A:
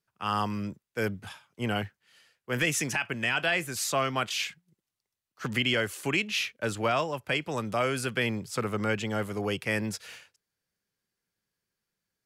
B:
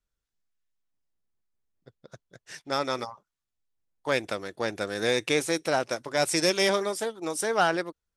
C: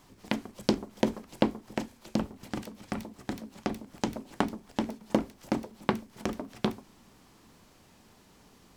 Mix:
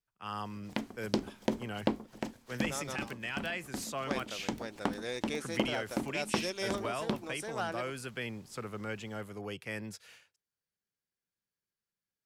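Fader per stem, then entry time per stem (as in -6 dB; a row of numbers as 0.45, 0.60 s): -10.5, -13.0, -5.0 dB; 0.00, 0.00, 0.45 s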